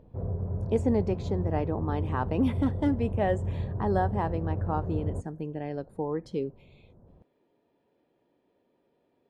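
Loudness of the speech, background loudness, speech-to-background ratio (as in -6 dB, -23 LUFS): -31.0 LUFS, -33.0 LUFS, 2.0 dB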